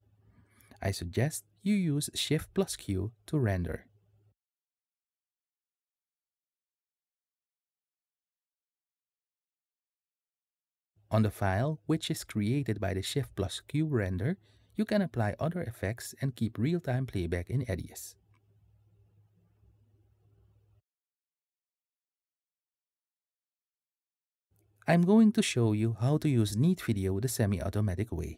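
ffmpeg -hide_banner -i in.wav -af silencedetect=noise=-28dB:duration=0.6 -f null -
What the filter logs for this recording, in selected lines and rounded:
silence_start: 0.00
silence_end: 0.83 | silence_duration: 0.83
silence_start: 3.75
silence_end: 11.13 | silence_duration: 7.38
silence_start: 17.79
silence_end: 24.88 | silence_duration: 7.09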